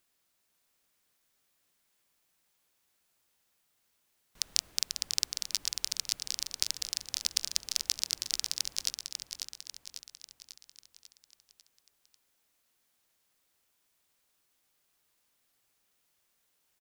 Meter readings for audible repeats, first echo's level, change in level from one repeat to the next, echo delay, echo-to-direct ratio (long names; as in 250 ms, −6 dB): 6, −6.5 dB, −5.5 dB, 545 ms, −5.0 dB